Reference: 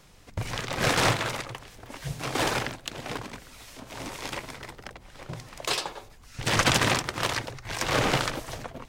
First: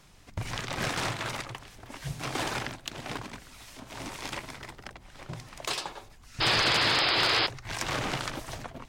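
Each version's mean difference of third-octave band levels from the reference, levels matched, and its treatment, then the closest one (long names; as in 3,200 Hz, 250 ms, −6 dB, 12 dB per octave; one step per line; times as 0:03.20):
2.0 dB: parametric band 490 Hz −5 dB 0.4 octaves
downward compressor 6 to 1, threshold −26 dBFS, peak gain reduction 8.5 dB
sound drawn into the spectrogram noise, 0:06.40–0:07.47, 290–5,200 Hz −24 dBFS
level −1.5 dB
Nellymoser 88 kbit/s 44,100 Hz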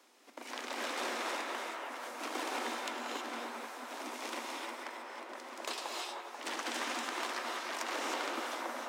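11.0 dB: downward compressor 10 to 1, threshold −29 dBFS, peak gain reduction 12.5 dB
Chebyshev high-pass with heavy ripple 230 Hz, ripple 3 dB
on a send: delay with a band-pass on its return 488 ms, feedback 63%, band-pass 1,000 Hz, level −5 dB
on the sum: reverb whose tail is shaped and stops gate 340 ms rising, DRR −0.5 dB
level −5 dB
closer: first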